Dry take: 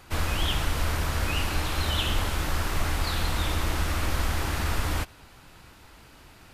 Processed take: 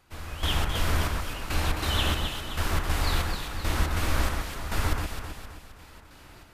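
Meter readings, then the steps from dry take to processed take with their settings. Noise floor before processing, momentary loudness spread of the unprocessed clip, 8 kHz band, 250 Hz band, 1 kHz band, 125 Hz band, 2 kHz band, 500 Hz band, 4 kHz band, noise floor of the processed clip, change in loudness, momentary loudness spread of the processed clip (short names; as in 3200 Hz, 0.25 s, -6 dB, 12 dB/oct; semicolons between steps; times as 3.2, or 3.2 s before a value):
-52 dBFS, 2 LU, -1.5 dB, -0.5 dB, -0.5 dB, -1.0 dB, -1.0 dB, -0.5 dB, -0.5 dB, -50 dBFS, -1.0 dB, 11 LU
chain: step gate "....xx.xxx" 140 bpm -12 dB; echo with dull and thin repeats by turns 0.131 s, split 2100 Hz, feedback 69%, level -2.5 dB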